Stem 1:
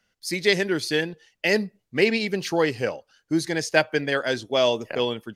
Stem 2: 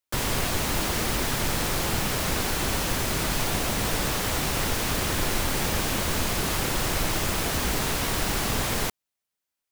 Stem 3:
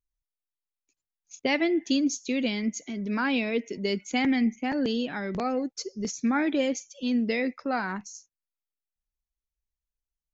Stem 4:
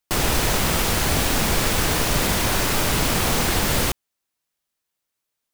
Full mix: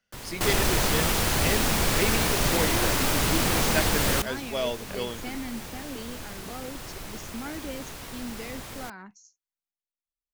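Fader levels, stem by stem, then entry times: -8.5 dB, -13.5 dB, -12.0 dB, -3.5 dB; 0.00 s, 0.00 s, 1.10 s, 0.30 s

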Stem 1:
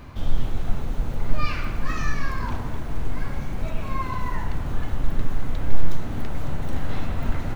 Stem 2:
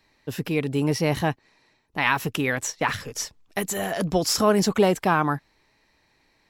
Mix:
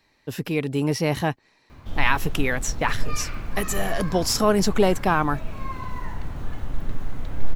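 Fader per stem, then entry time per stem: -4.5 dB, 0.0 dB; 1.70 s, 0.00 s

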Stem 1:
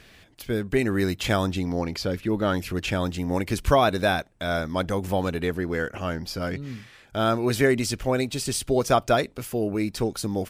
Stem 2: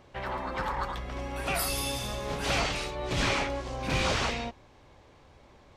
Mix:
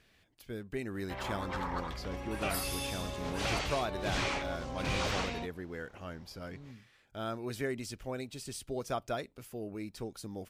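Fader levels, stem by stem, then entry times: -15.0 dB, -5.5 dB; 0.00 s, 0.95 s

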